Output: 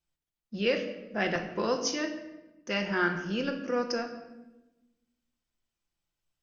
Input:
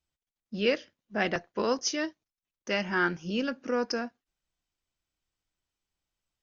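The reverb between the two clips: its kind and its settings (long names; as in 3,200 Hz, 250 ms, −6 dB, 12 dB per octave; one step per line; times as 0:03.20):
rectangular room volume 510 cubic metres, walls mixed, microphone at 0.83 metres
level −2 dB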